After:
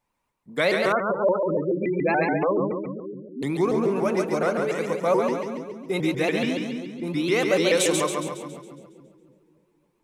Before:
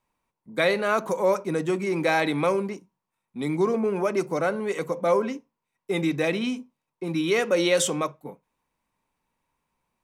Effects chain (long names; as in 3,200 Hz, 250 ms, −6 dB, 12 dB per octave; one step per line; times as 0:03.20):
echo with a time of its own for lows and highs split 380 Hz, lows 262 ms, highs 138 ms, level −4 dB
0:00.92–0:03.43: gate on every frequency bin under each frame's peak −15 dB strong
pitch modulation by a square or saw wave saw up 7 Hz, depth 160 cents